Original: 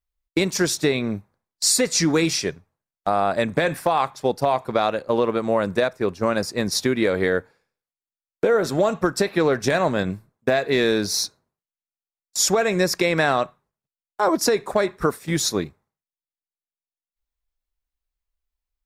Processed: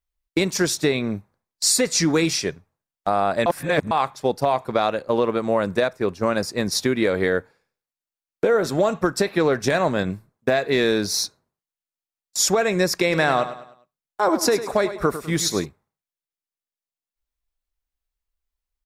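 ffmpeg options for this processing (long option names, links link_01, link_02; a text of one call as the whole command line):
ffmpeg -i in.wav -filter_complex "[0:a]asplit=3[link_01][link_02][link_03];[link_01]afade=type=out:start_time=13.11:duration=0.02[link_04];[link_02]aecho=1:1:102|204|306|408:0.251|0.098|0.0382|0.0149,afade=type=in:start_time=13.11:duration=0.02,afade=type=out:start_time=15.64:duration=0.02[link_05];[link_03]afade=type=in:start_time=15.64:duration=0.02[link_06];[link_04][link_05][link_06]amix=inputs=3:normalize=0,asplit=3[link_07][link_08][link_09];[link_07]atrim=end=3.462[link_10];[link_08]atrim=start=3.458:end=3.912,asetpts=PTS-STARTPTS,areverse[link_11];[link_09]atrim=start=3.908[link_12];[link_10][link_11]acrossfade=duration=0.004:curve1=hsin:curve2=hsin[link_13];[link_13][link_12]acrossfade=duration=0.004:curve1=hsin:curve2=hsin" out.wav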